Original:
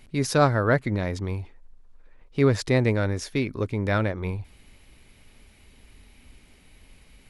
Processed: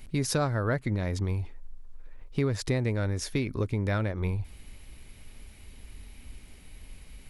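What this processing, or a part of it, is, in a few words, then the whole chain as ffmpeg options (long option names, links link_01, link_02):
ASMR close-microphone chain: -af "lowshelf=frequency=110:gain=8,acompressor=threshold=-25dB:ratio=4,highshelf=frequency=7700:gain=7"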